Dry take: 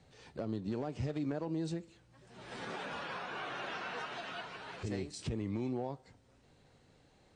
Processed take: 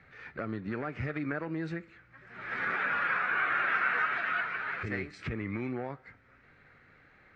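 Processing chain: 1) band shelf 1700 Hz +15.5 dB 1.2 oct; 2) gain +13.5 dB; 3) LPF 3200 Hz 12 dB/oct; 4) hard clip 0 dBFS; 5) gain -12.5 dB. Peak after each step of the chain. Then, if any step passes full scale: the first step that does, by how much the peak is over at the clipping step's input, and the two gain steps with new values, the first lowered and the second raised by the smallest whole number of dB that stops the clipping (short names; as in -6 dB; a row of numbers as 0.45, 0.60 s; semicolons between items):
-18.5, -5.0, -5.5, -5.5, -18.0 dBFS; no overload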